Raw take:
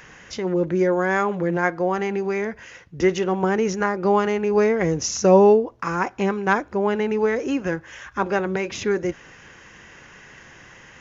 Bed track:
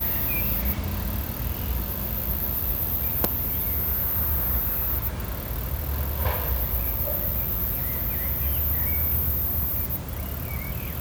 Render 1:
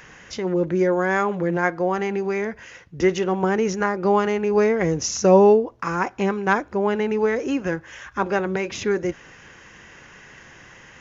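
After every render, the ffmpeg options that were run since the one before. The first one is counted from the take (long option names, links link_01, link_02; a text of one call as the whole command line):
ffmpeg -i in.wav -af anull out.wav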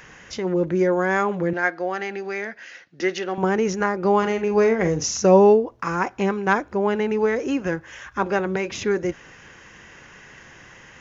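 ffmpeg -i in.wav -filter_complex "[0:a]asettb=1/sr,asplit=3[link_01][link_02][link_03];[link_01]atrim=end=1.534[link_04];[link_02]atrim=start=1.53:end=3.38,asetpts=PTS-STARTPTS,afade=type=in:duration=0.004:curve=qsin,afade=type=out:start_time=1.846:duration=0.004:curve=qsin,highpass=340,equalizer=frequency=450:width_type=q:width=4:gain=-8,equalizer=frequency=1000:width_type=q:width=4:gain=-9,equalizer=frequency=1700:width_type=q:width=4:gain=4,equalizer=frequency=4300:width_type=q:width=4:gain=5,lowpass=frequency=6400:width=0.5412,lowpass=frequency=6400:width=1.3066[link_05];[link_03]atrim=start=3.376[link_06];[link_04][link_05]acrossfade=duration=0.004:curve1=hsin:curve2=qsin[link_07];[link_07][link_06]acrossfade=duration=0.004:curve1=qsin:curve2=hsin,asettb=1/sr,asplit=3[link_08][link_09][link_10];[link_08]atrim=end=4.184[link_11];[link_09]atrim=start=4.18:end=5.13,asetpts=PTS-STARTPTS,afade=type=in:duration=0.004:curve=qsin,afade=type=out:start_time=0.946:duration=0.004:curve=qsin,asplit=2[link_12][link_13];[link_13]adelay=45,volume=-9.5dB[link_14];[link_12][link_14]amix=inputs=2:normalize=0,atrim=end_sample=41895[link_15];[link_10]atrim=start=5.126[link_16];[link_11][link_15]acrossfade=duration=0.004:curve1=hsin:curve2=qsin[link_17];[link_17][link_16]acrossfade=duration=0.004:curve1=qsin:curve2=hsin" out.wav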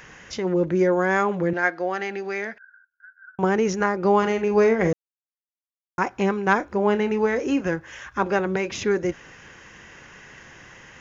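ffmpeg -i in.wav -filter_complex "[0:a]asettb=1/sr,asplit=3[link_01][link_02][link_03];[link_01]atrim=end=2.584[link_04];[link_02]atrim=start=2.58:end=3.39,asetpts=PTS-STARTPTS,afade=type=in:duration=0.004:curve=qsin,afade=type=out:start_time=0.806:duration=0.004:curve=qsin,asuperpass=centerf=1500:order=8:qfactor=7.2[link_05];[link_03]atrim=start=3.386[link_06];[link_04][link_05]acrossfade=duration=0.004:curve1=hsin:curve2=qsin[link_07];[link_07][link_06]acrossfade=duration=0.004:curve1=qsin:curve2=hsin,asettb=1/sr,asplit=3[link_08][link_09][link_10];[link_08]atrim=end=6.574[link_11];[link_09]atrim=start=6.57:end=7.63,asetpts=PTS-STARTPTS,afade=type=in:duration=0.004:curve=qsin,afade=type=out:start_time=1.056:duration=0.004:curve=qsin,asplit=2[link_12][link_13];[link_13]adelay=29,volume=-11dB[link_14];[link_12][link_14]amix=inputs=2:normalize=0,atrim=end_sample=46746[link_15];[link_10]atrim=start=7.626[link_16];[link_11][link_15]acrossfade=duration=0.004:curve1=hsin:curve2=qsin[link_17];[link_17][link_16]acrossfade=duration=0.004:curve1=qsin:curve2=hsin,asplit=3[link_18][link_19][link_20];[link_18]atrim=end=4.93,asetpts=PTS-STARTPTS,afade=type=out:start_time=4.926:duration=0.004:curve=hsin[link_21];[link_19]atrim=start=4.93:end=5.98,asetpts=PTS-STARTPTS,volume=0[link_22];[link_20]atrim=start=5.98,asetpts=PTS-STARTPTS,afade=type=in:duration=0.004:curve=hsin[link_23];[link_21][link_22][link_23]concat=n=3:v=0:a=1" out.wav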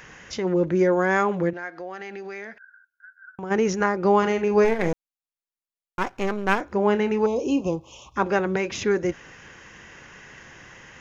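ffmpeg -i in.wav -filter_complex "[0:a]asplit=3[link_01][link_02][link_03];[link_01]afade=type=out:start_time=1.49:duration=0.02[link_04];[link_02]acompressor=threshold=-35dB:ratio=2.5:attack=3.2:release=140:knee=1:detection=peak,afade=type=in:start_time=1.49:duration=0.02,afade=type=out:start_time=3.5:duration=0.02[link_05];[link_03]afade=type=in:start_time=3.5:duration=0.02[link_06];[link_04][link_05][link_06]amix=inputs=3:normalize=0,asplit=3[link_07][link_08][link_09];[link_07]afade=type=out:start_time=4.64:duration=0.02[link_10];[link_08]aeval=exprs='if(lt(val(0),0),0.251*val(0),val(0))':channel_layout=same,afade=type=in:start_time=4.64:duration=0.02,afade=type=out:start_time=6.6:duration=0.02[link_11];[link_09]afade=type=in:start_time=6.6:duration=0.02[link_12];[link_10][link_11][link_12]amix=inputs=3:normalize=0,asettb=1/sr,asplit=3[link_13][link_14][link_15];[link_13]atrim=end=7.264[link_16];[link_14]atrim=start=7.26:end=8.16,asetpts=PTS-STARTPTS,afade=type=in:duration=0.004:curve=qsin,afade=type=out:start_time=0.896:duration=0.004:curve=qsin,asuperstop=centerf=1700:order=8:qfactor=1.1[link_17];[link_15]atrim=start=8.156[link_18];[link_16][link_17]acrossfade=duration=0.004:curve1=hsin:curve2=qsin[link_19];[link_19][link_18]acrossfade=duration=0.004:curve1=qsin:curve2=hsin" out.wav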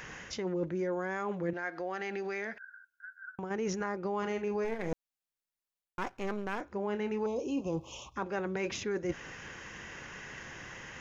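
ffmpeg -i in.wav -af "alimiter=limit=-15dB:level=0:latency=1:release=332,areverse,acompressor=threshold=-31dB:ratio=6,areverse" out.wav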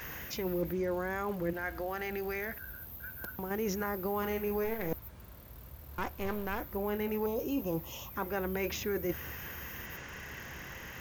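ffmpeg -i in.wav -i bed.wav -filter_complex "[1:a]volume=-20.5dB[link_01];[0:a][link_01]amix=inputs=2:normalize=0" out.wav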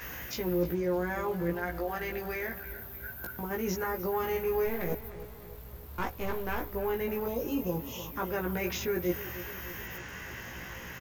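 ffmpeg -i in.wav -filter_complex "[0:a]asplit=2[link_01][link_02];[link_02]adelay=17,volume=-2dB[link_03];[link_01][link_03]amix=inputs=2:normalize=0,asplit=2[link_04][link_05];[link_05]adelay=304,lowpass=frequency=3400:poles=1,volume=-14dB,asplit=2[link_06][link_07];[link_07]adelay=304,lowpass=frequency=3400:poles=1,volume=0.55,asplit=2[link_08][link_09];[link_09]adelay=304,lowpass=frequency=3400:poles=1,volume=0.55,asplit=2[link_10][link_11];[link_11]adelay=304,lowpass=frequency=3400:poles=1,volume=0.55,asplit=2[link_12][link_13];[link_13]adelay=304,lowpass=frequency=3400:poles=1,volume=0.55,asplit=2[link_14][link_15];[link_15]adelay=304,lowpass=frequency=3400:poles=1,volume=0.55[link_16];[link_04][link_06][link_08][link_10][link_12][link_14][link_16]amix=inputs=7:normalize=0" out.wav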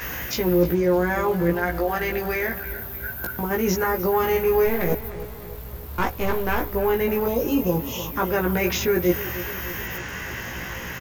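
ffmpeg -i in.wav -af "volume=10dB" out.wav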